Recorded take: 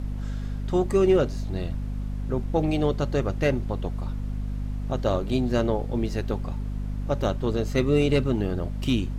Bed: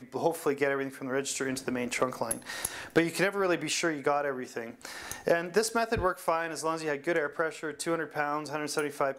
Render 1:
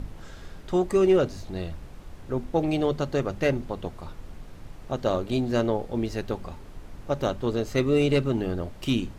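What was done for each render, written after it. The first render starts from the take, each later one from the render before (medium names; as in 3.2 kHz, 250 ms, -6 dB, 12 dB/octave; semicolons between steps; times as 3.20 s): hum notches 50/100/150/200/250 Hz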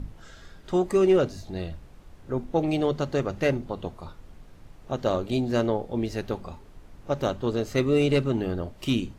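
noise print and reduce 6 dB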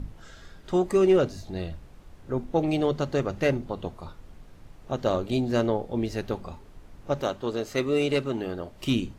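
7.21–8.73 s: bass shelf 190 Hz -11.5 dB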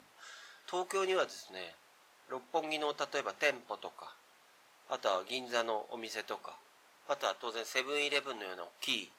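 high-pass 900 Hz 12 dB/octave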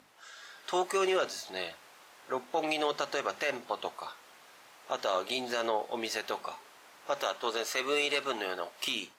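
peak limiter -26.5 dBFS, peak gain reduction 11 dB; level rider gain up to 8 dB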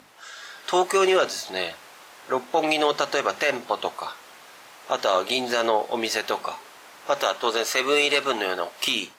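trim +9 dB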